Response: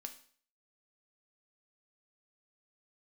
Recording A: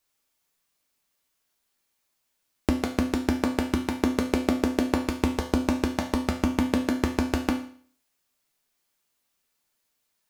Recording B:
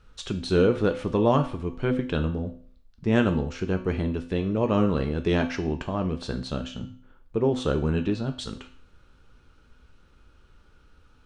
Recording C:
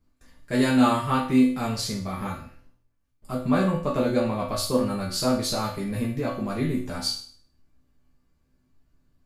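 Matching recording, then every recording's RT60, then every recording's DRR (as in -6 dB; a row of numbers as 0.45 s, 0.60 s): B; 0.50 s, 0.50 s, 0.50 s; 1.0 dB, 5.5 dB, -6.5 dB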